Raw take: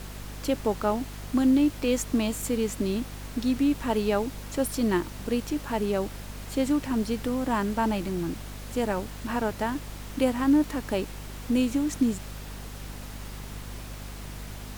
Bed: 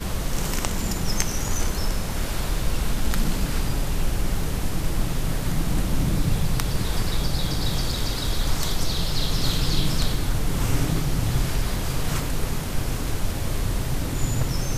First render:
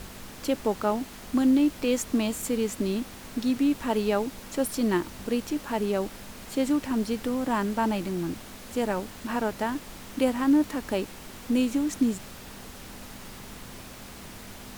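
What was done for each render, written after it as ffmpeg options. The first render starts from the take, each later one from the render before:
-af "bandreject=f=50:t=h:w=4,bandreject=f=100:t=h:w=4,bandreject=f=150:t=h:w=4"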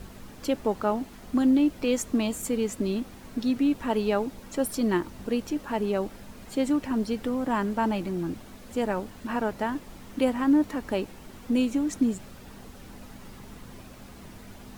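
-af "afftdn=nr=8:nf=-44"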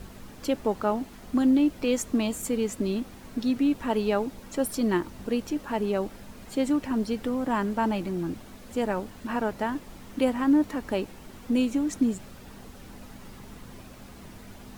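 -af anull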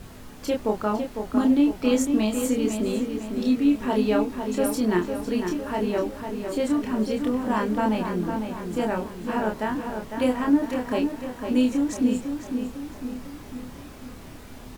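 -filter_complex "[0:a]asplit=2[s0][s1];[s1]adelay=28,volume=0.708[s2];[s0][s2]amix=inputs=2:normalize=0,asplit=2[s3][s4];[s4]adelay=503,lowpass=f=3800:p=1,volume=0.473,asplit=2[s5][s6];[s6]adelay=503,lowpass=f=3800:p=1,volume=0.54,asplit=2[s7][s8];[s8]adelay=503,lowpass=f=3800:p=1,volume=0.54,asplit=2[s9][s10];[s10]adelay=503,lowpass=f=3800:p=1,volume=0.54,asplit=2[s11][s12];[s12]adelay=503,lowpass=f=3800:p=1,volume=0.54,asplit=2[s13][s14];[s14]adelay=503,lowpass=f=3800:p=1,volume=0.54,asplit=2[s15][s16];[s16]adelay=503,lowpass=f=3800:p=1,volume=0.54[s17];[s3][s5][s7][s9][s11][s13][s15][s17]amix=inputs=8:normalize=0"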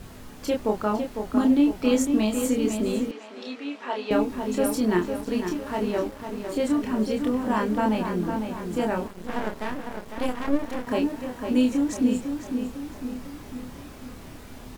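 -filter_complex "[0:a]asettb=1/sr,asplit=3[s0][s1][s2];[s0]atrim=end=3.114[s3];[s1]atrim=start=3.11:end=4.11,asetpts=PTS-STARTPTS,afade=t=in:d=0.004:c=qsin,afade=t=out:st=0.996:d=0.004:c=qsin,highpass=640,lowpass=4600[s4];[s2]atrim=start=4.106[s5];[s3][s4]acrossfade=d=0.004:c1=hsin:c2=qsin[s6];[s6][s5]acrossfade=d=0.004:c1=qsin:c2=hsin,asettb=1/sr,asplit=3[s7][s8][s9];[s7]atrim=end=5.164[s10];[s8]atrim=start=5.16:end=6.56,asetpts=PTS-STARTPTS,afade=t=in:d=0.004:c=qsin,afade=t=out:st=1.396:d=0.004:c=qsin,aeval=exprs='sgn(val(0))*max(abs(val(0))-0.00841,0)':c=same[s11];[s9]atrim=start=6.556[s12];[s10][s11]acrossfade=d=0.004:c1=hsin:c2=qsin[s13];[s13][s12]acrossfade=d=0.004:c1=qsin:c2=hsin,asettb=1/sr,asplit=3[s14][s15][s16];[s14]atrim=end=9.074[s17];[s15]atrim=start=9.07:end=10.87,asetpts=PTS-STARTPTS,afade=t=in:d=0.004:c=qsin,afade=t=out:st=1.796:d=0.004:c=qsin,aeval=exprs='max(val(0),0)':c=same[s18];[s16]atrim=start=10.866[s19];[s17][s18]acrossfade=d=0.004:c1=hsin:c2=qsin[s20];[s20][s19]acrossfade=d=0.004:c1=qsin:c2=hsin"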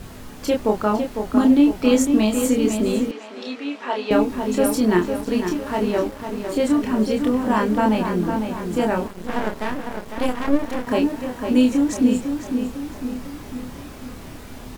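-af "volume=1.78"

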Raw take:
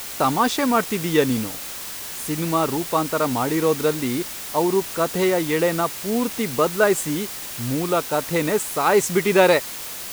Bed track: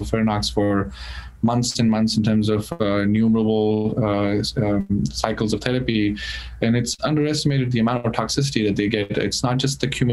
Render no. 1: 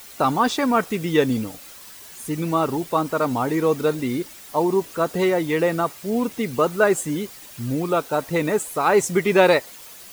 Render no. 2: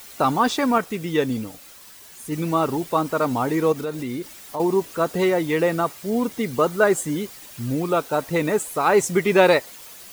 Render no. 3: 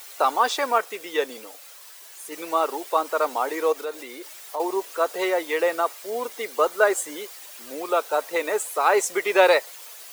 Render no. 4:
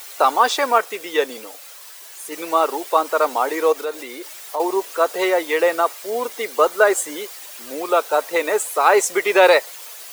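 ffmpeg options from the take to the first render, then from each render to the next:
-af "afftdn=nr=11:nf=-33"
-filter_complex "[0:a]asettb=1/sr,asplit=3[s0][s1][s2];[s0]atrim=end=3.724[s3];[s1]atrim=start=3.72:end=4.6,asetpts=PTS-STARTPTS,afade=t=in:d=0.004:c=qsin,afade=t=out:st=0.876:d=0.004:c=qsin,acompressor=threshold=0.0501:ratio=3:attack=3.2:release=140:knee=1:detection=peak[s4];[s2]atrim=start=4.596[s5];[s3][s4]acrossfade=d=0.004:c1=hsin:c2=qsin[s6];[s6][s5]acrossfade=d=0.004:c1=qsin:c2=hsin,asettb=1/sr,asplit=3[s7][s8][s9];[s7]atrim=end=6.024[s10];[s8]atrim=start=6.02:end=7.17,asetpts=PTS-STARTPTS,afade=t=in:d=0.004:c=qsin,afade=t=out:st=1.146:d=0.004:c=qsin,bandreject=f=2600:w=12[s11];[s9]atrim=start=7.166[s12];[s10][s11]acrossfade=d=0.004:c1=hsin:c2=qsin[s13];[s13][s12]acrossfade=d=0.004:c1=qsin:c2=hsin,asplit=3[s14][s15][s16];[s14]atrim=end=0.782[s17];[s15]atrim=start=0.778:end=2.322,asetpts=PTS-STARTPTS,volume=0.708[s18];[s16]atrim=start=2.318[s19];[s17][s18]acrossfade=d=0.004:c1=hsin:c2=hsin[s20];[s20][s19]acrossfade=d=0.004:c1=hsin:c2=hsin"
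-af "highpass=f=440:w=0.5412,highpass=f=440:w=1.3066"
-af "volume=1.78,alimiter=limit=0.794:level=0:latency=1"

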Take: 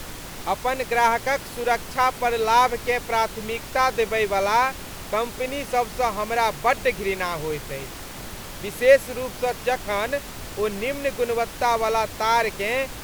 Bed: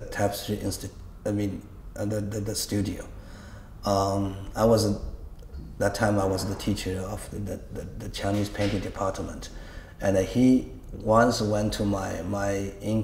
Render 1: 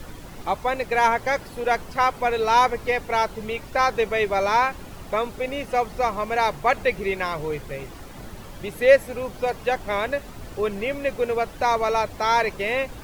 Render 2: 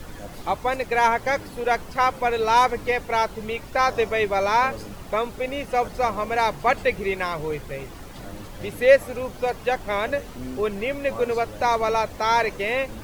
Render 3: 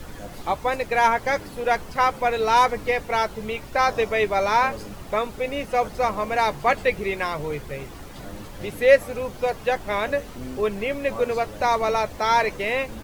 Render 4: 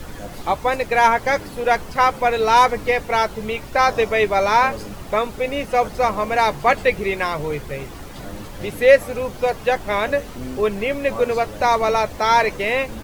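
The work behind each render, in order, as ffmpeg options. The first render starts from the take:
-af "afftdn=nr=10:nf=-37"
-filter_complex "[1:a]volume=0.168[s0];[0:a][s0]amix=inputs=2:normalize=0"
-filter_complex "[0:a]asplit=2[s0][s1];[s1]adelay=14,volume=0.211[s2];[s0][s2]amix=inputs=2:normalize=0"
-af "volume=1.58,alimiter=limit=0.891:level=0:latency=1"

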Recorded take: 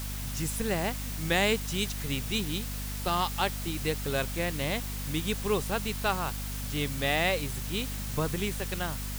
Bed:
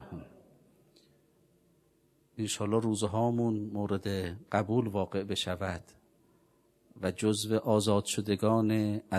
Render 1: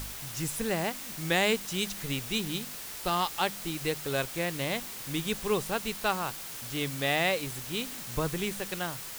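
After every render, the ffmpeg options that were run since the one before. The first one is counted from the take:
-af "bandreject=f=50:t=h:w=4,bandreject=f=100:t=h:w=4,bandreject=f=150:t=h:w=4,bandreject=f=200:t=h:w=4,bandreject=f=250:t=h:w=4"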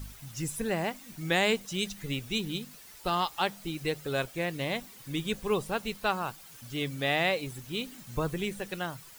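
-af "afftdn=nr=12:nf=-41"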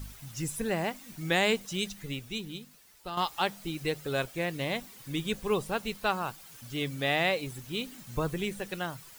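-filter_complex "[0:a]asplit=2[s0][s1];[s0]atrim=end=3.17,asetpts=PTS-STARTPTS,afade=t=out:st=1.73:d=1.44:c=qua:silence=0.354813[s2];[s1]atrim=start=3.17,asetpts=PTS-STARTPTS,afade=t=in:d=0.004:c=hsin:silence=0.354813[s3];[s2][s3]concat=n=2:v=0:a=1"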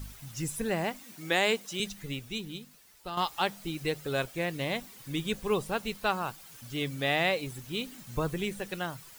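-filter_complex "[0:a]asettb=1/sr,asplit=3[s0][s1][s2];[s0]atrim=end=1.034[s3];[s1]atrim=start=1.03:end=1.8,asetpts=PTS-STARTPTS,afade=t=in:d=0.004:c=qsin,afade=t=out:st=0.766:d=0.004:c=qsin,highpass=250[s4];[s2]atrim=start=1.796[s5];[s3][s4]acrossfade=d=0.004:c1=hsin:c2=qsin[s6];[s6][s5]acrossfade=d=0.004:c1=qsin:c2=hsin"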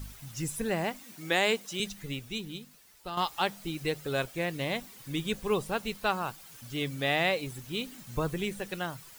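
-af anull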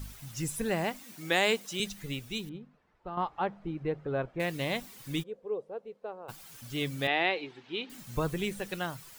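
-filter_complex "[0:a]asettb=1/sr,asplit=3[s0][s1][s2];[s0]atrim=end=2.494[s3];[s1]atrim=start=2.49:end=4.4,asetpts=PTS-STARTPTS,afade=t=in:d=0.004:c=qsin,afade=t=out:st=1.906:d=0.004:c=qsin,lowpass=1200[s4];[s2]atrim=start=4.396[s5];[s3][s4]acrossfade=d=0.004:c1=hsin:c2=qsin[s6];[s6][s5]acrossfade=d=0.004:c1=qsin:c2=hsin,asplit=3[s7][s8][s9];[s7]afade=t=out:st=5.22:d=0.02[s10];[s8]bandpass=f=490:t=q:w=4.6,afade=t=in:st=5.22:d=0.02,afade=t=out:st=6.28:d=0.02[s11];[s9]afade=t=in:st=6.28:d=0.02[s12];[s10][s11][s12]amix=inputs=3:normalize=0,asettb=1/sr,asplit=3[s13][s14][s15];[s13]atrim=end=7.074[s16];[s14]atrim=start=7.07:end=7.9,asetpts=PTS-STARTPTS,afade=t=in:d=0.004:c=qsin,afade=t=out:st=0.826:d=0.004:c=qsin,highpass=340,equalizer=f=350:t=q:w=4:g=6,equalizer=f=570:t=q:w=4:g=-6,equalizer=f=840:t=q:w=4:g=4,equalizer=f=1200:t=q:w=4:g=-3,lowpass=f=3800:w=0.5412,lowpass=f=3800:w=1.3066[s17];[s15]atrim=start=7.896[s18];[s16][s17]acrossfade=d=0.004:c1=hsin:c2=qsin[s19];[s19][s18]acrossfade=d=0.004:c1=qsin:c2=hsin"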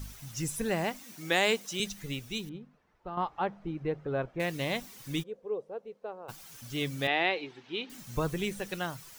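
-af "equalizer=f=5900:t=o:w=0.33:g=4"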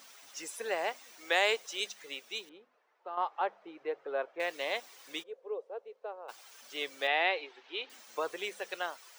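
-af "highpass=f=450:w=0.5412,highpass=f=450:w=1.3066,equalizer=f=16000:t=o:w=1:g=-14"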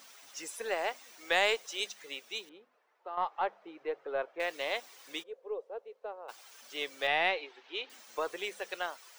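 -af "aeval=exprs='0.2*(cos(1*acos(clip(val(0)/0.2,-1,1)))-cos(1*PI/2))+0.00708*(cos(2*acos(clip(val(0)/0.2,-1,1)))-cos(2*PI/2))+0.00251*(cos(6*acos(clip(val(0)/0.2,-1,1)))-cos(6*PI/2))':c=same"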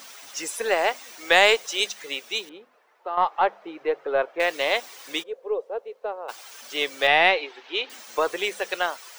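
-af "volume=3.55"

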